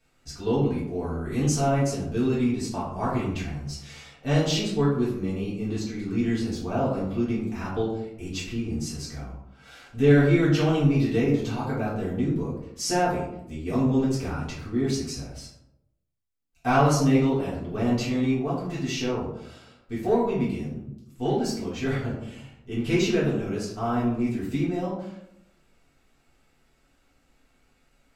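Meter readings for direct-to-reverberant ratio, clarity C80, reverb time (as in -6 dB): -8.0 dB, 7.0 dB, 0.80 s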